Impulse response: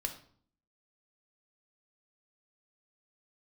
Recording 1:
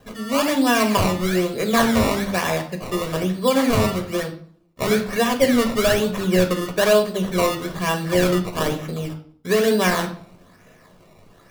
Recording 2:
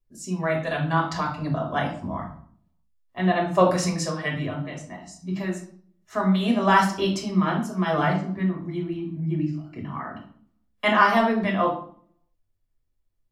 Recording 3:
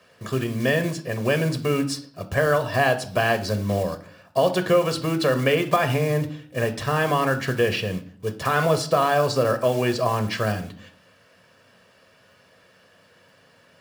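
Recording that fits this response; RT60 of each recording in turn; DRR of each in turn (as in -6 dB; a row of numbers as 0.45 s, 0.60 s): 1; 0.55 s, 0.55 s, 0.55 s; 4.0 dB, -1.5 dB, 8.0 dB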